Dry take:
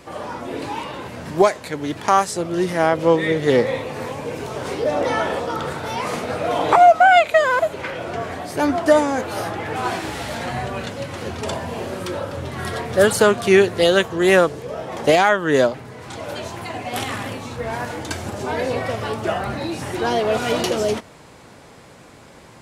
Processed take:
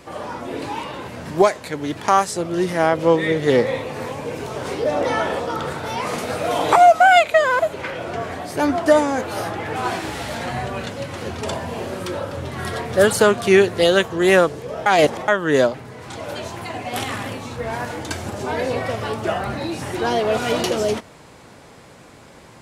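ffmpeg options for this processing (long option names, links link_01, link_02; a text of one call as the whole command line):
ffmpeg -i in.wav -filter_complex "[0:a]asettb=1/sr,asplit=3[link_01][link_02][link_03];[link_01]atrim=end=6.184[link_04];[link_02]atrim=start=6.18:end=7.24,asetpts=PTS-STARTPTS,afade=type=in:duration=0.004:curve=qsin,afade=type=out:start_time=1.056:duration=0.004:curve=qsin,aemphasis=mode=production:type=cd[link_05];[link_03]atrim=start=7.236[link_06];[link_04][link_05]acrossfade=duration=0.004:curve1=hsin:curve2=qsin[link_07];[link_07][link_06]acrossfade=duration=0.004:curve1=qsin:curve2=hsin,asplit=3[link_08][link_09][link_10];[link_08]atrim=end=14.862[link_11];[link_09]atrim=start=14.858:end=15.282,asetpts=PTS-STARTPTS,areverse[link_12];[link_10]atrim=start=15.278[link_13];[link_11][link_12]acrossfade=duration=0.004:curve1=hsin:curve2=hsin[link_14];[link_14][link_13]acrossfade=duration=0.004:curve1=hsin:curve2=hsin" out.wav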